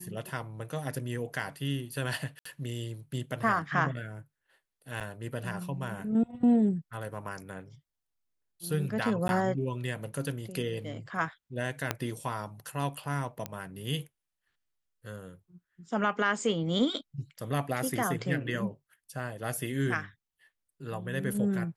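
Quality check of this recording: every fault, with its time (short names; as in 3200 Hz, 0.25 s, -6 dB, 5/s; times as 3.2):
2.39–2.45 gap 64 ms
5–5.01 gap 7.2 ms
9.28–9.29 gap 11 ms
11.91 pop -12 dBFS
13.46 pop -18 dBFS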